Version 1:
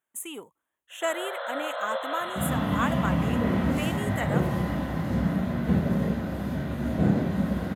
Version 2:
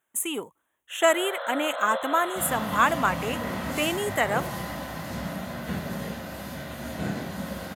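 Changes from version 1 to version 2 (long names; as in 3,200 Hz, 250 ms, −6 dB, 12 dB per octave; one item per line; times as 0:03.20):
speech +8.0 dB
second sound: add tilt shelving filter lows −9.5 dB, about 1,200 Hz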